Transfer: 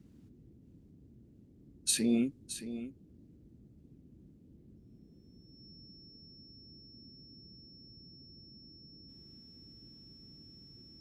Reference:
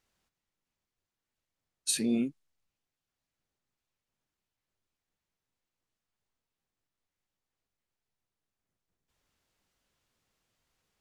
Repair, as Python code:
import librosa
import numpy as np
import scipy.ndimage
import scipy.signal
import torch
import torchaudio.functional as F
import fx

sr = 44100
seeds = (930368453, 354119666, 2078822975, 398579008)

y = fx.notch(x, sr, hz=5400.0, q=30.0)
y = fx.noise_reduce(y, sr, print_start_s=1.25, print_end_s=1.75, reduce_db=30.0)
y = fx.fix_echo_inverse(y, sr, delay_ms=620, level_db=-12.0)